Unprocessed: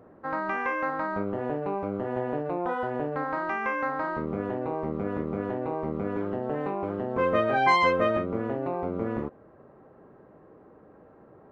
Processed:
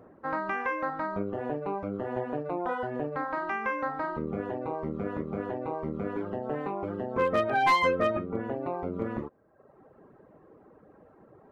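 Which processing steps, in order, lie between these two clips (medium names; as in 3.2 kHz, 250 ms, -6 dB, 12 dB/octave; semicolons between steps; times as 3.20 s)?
overload inside the chain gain 15.5 dB; reverb removal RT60 0.97 s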